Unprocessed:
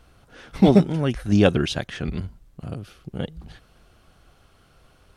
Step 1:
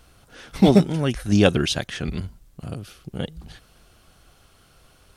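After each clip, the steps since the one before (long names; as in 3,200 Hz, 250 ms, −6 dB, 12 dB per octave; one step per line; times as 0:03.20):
high-shelf EQ 3,900 Hz +9 dB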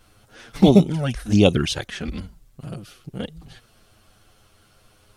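flanger swept by the level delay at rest 9.9 ms, full sweep at −12 dBFS
level +2 dB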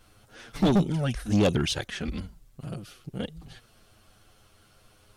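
soft clipping −14 dBFS, distortion −8 dB
level −2.5 dB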